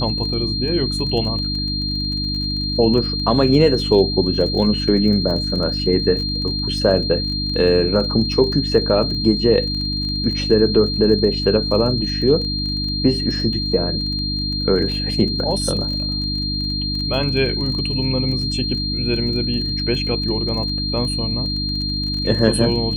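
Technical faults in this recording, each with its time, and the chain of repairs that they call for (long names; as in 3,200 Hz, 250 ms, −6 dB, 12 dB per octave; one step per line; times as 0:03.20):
surface crackle 22 per second −27 dBFS
mains hum 50 Hz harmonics 6 −25 dBFS
whistle 4,200 Hz −23 dBFS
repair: click removal
hum removal 50 Hz, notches 6
notch filter 4,200 Hz, Q 30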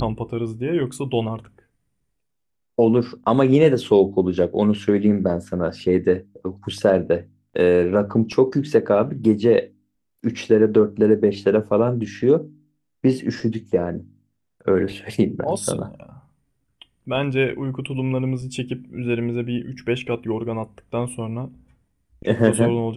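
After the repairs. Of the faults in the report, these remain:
none of them is left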